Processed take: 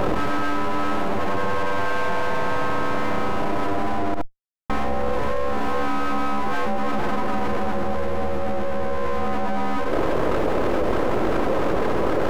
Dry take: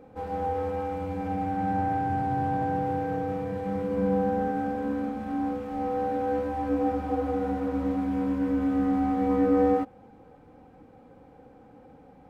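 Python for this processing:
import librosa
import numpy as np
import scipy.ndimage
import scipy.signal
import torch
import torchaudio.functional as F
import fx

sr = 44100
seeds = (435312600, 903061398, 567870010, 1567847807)

p1 = np.abs(x)
p2 = fx.dmg_noise_band(p1, sr, seeds[0], low_hz=290.0, high_hz=590.0, level_db=-56.0)
p3 = fx.schmitt(p2, sr, flips_db=-31.0, at=(4.14, 4.7))
p4 = p3 + fx.echo_single(p3, sr, ms=72, db=-19.0, dry=0)
y = fx.env_flatten(p4, sr, amount_pct=100)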